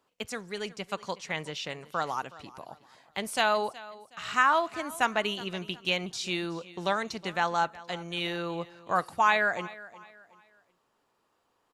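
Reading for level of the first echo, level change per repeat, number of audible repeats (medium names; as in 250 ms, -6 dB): -19.0 dB, -9.5 dB, 2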